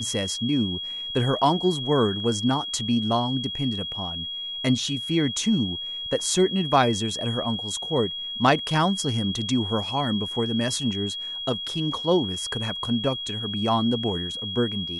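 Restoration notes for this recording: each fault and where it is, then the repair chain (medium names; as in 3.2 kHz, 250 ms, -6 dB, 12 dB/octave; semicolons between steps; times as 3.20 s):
whine 3.3 kHz -30 dBFS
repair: band-stop 3.3 kHz, Q 30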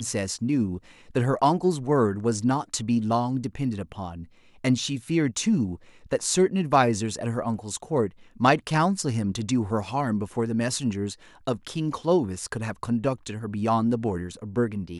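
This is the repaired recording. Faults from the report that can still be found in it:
nothing left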